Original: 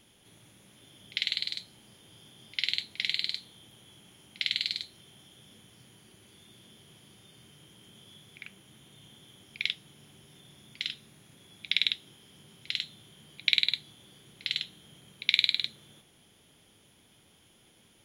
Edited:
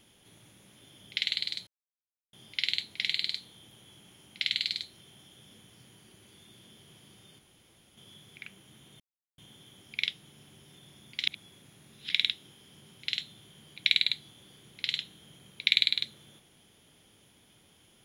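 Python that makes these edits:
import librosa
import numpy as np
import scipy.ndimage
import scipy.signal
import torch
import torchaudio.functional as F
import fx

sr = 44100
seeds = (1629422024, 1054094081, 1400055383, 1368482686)

y = fx.edit(x, sr, fx.silence(start_s=1.67, length_s=0.66),
    fx.room_tone_fill(start_s=7.39, length_s=0.58, crossfade_s=0.02),
    fx.insert_silence(at_s=9.0, length_s=0.38),
    fx.reverse_span(start_s=10.89, length_s=0.83), tone=tone)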